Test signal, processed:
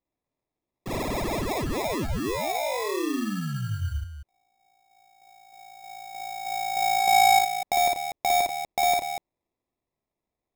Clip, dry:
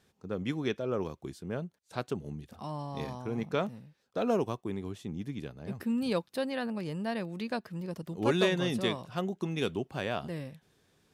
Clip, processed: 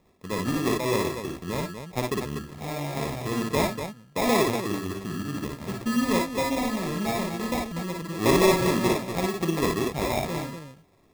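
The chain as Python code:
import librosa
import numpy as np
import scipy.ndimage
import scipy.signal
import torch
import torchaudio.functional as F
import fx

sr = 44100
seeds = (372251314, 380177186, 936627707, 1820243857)

y = fx.sample_hold(x, sr, seeds[0], rate_hz=1500.0, jitter_pct=0)
y = fx.echo_multitap(y, sr, ms=(55, 58, 89, 243), db=(-3.5, -5.5, -16.0, -8.0))
y = F.gain(torch.from_numpy(y), 4.5).numpy()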